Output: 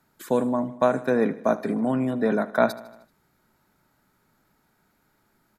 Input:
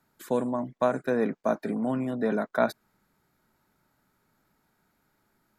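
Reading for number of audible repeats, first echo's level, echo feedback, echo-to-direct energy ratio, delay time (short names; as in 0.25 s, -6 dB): 4, -18.0 dB, 60%, -16.0 dB, 77 ms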